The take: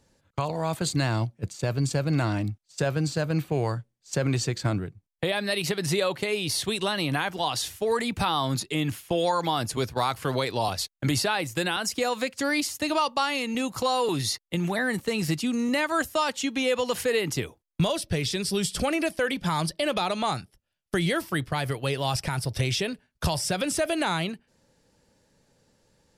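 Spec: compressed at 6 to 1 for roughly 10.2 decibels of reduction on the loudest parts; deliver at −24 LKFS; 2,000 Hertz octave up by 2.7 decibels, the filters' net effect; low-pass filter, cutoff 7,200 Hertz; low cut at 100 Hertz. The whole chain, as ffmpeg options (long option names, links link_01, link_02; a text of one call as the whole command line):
ffmpeg -i in.wav -af "highpass=100,lowpass=7200,equalizer=frequency=2000:width_type=o:gain=3.5,acompressor=threshold=-31dB:ratio=6,volume=11dB" out.wav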